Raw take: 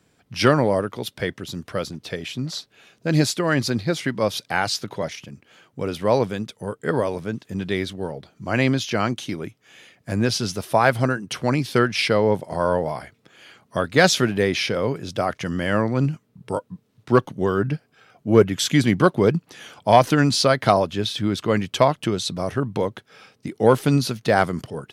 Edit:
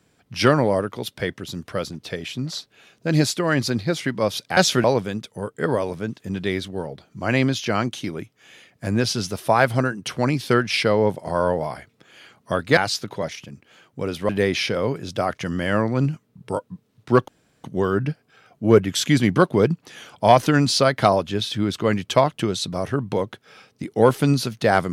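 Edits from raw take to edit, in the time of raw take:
0:04.57–0:06.09: swap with 0:14.02–0:14.29
0:17.28: splice in room tone 0.36 s

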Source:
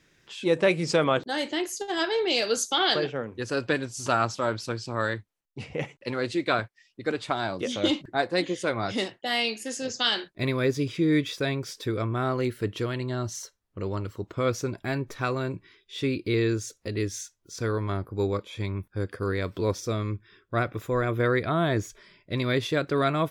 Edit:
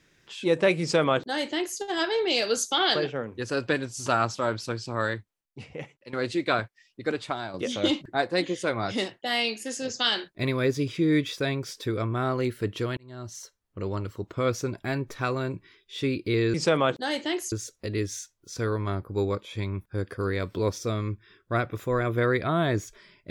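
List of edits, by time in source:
0:00.81–0:01.79: duplicate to 0:16.54
0:05.07–0:06.13: fade out, to −13.5 dB
0:07.14–0:07.54: fade out, to −8.5 dB
0:12.97–0:13.96: fade in equal-power

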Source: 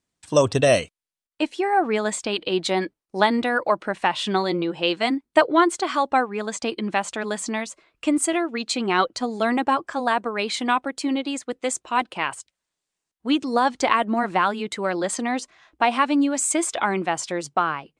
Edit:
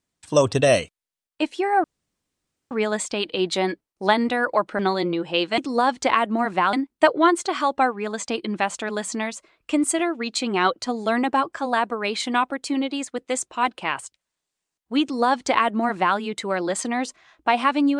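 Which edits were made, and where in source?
0:01.84: splice in room tone 0.87 s
0:03.92–0:04.28: remove
0:13.36–0:14.51: duplicate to 0:05.07

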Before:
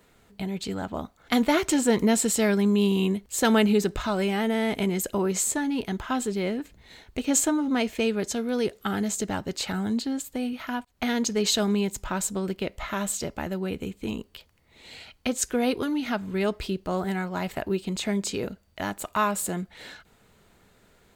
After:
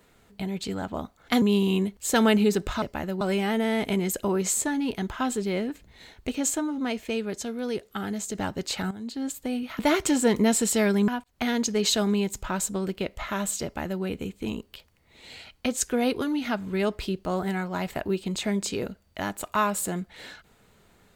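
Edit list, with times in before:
0:01.42–0:02.71: move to 0:10.69
0:07.28–0:09.25: clip gain −4 dB
0:09.81–0:10.17: fade in quadratic, from −12.5 dB
0:13.25–0:13.64: duplicate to 0:04.11

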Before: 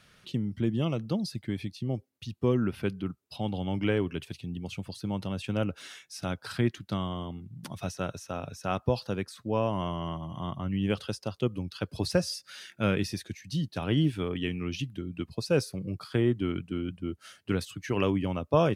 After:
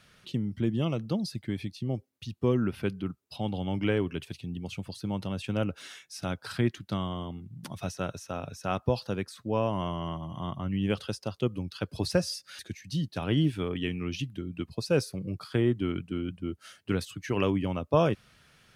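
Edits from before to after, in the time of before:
0:12.59–0:13.19: remove

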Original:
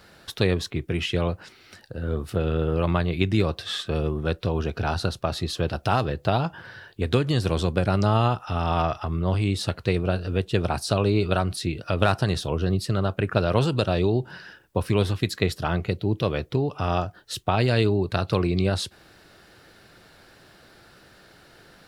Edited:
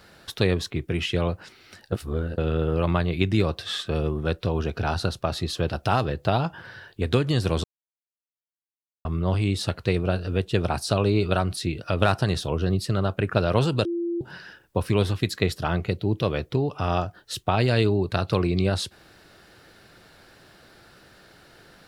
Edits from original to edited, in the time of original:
0:01.92–0:02.38: reverse
0:07.64–0:09.05: silence
0:13.85–0:14.21: beep over 342 Hz −24 dBFS

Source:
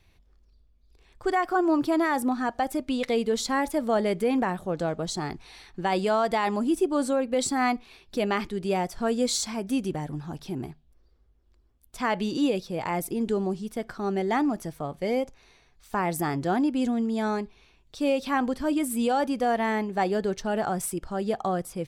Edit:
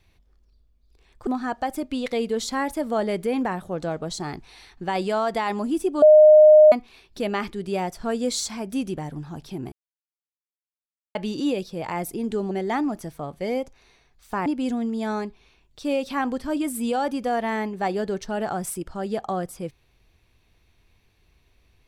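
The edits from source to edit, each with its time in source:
0:01.27–0:02.24: remove
0:06.99–0:07.69: beep over 613 Hz −7.5 dBFS
0:10.69–0:12.12: silence
0:13.48–0:14.12: remove
0:16.07–0:16.62: remove

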